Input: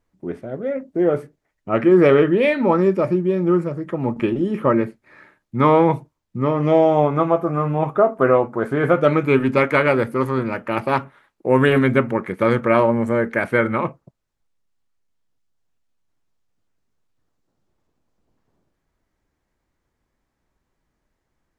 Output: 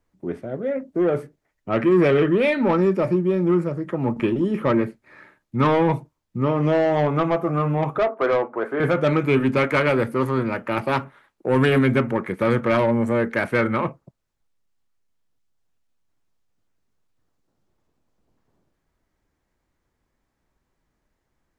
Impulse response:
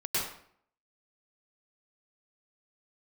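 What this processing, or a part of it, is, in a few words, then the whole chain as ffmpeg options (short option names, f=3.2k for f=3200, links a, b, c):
one-band saturation: -filter_complex "[0:a]asettb=1/sr,asplit=3[a][b][c];[a]atrim=end=7.984[d];[b]atrim=start=7.98:end=8.8,asetpts=PTS-STARTPTS,afade=t=in:d=0.004:c=qsin,afade=t=out:st=0.816:d=0.004:c=qsin,acrossover=split=290 2900:gain=0.0631 1 0.178[e][f][g];[e][f][g]amix=inputs=3:normalize=0[h];[c]atrim=start=8.796[i];[d][h]acrossfade=d=0.004:c1=hsin:c2=qsin[j];[j][i]acrossfade=d=0.004:c1=qsin:c2=hsin,acrossover=split=240|2300[k][l][m];[l]asoftclip=type=tanh:threshold=-15.5dB[n];[k][n][m]amix=inputs=3:normalize=0"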